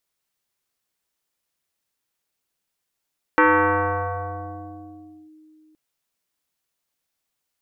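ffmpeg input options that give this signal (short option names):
-f lavfi -i "aevalsrc='0.282*pow(10,-3*t/3.33)*sin(2*PI*311*t+3.9*clip(1-t/1.92,0,1)*sin(2*PI*1.3*311*t))':d=2.37:s=44100"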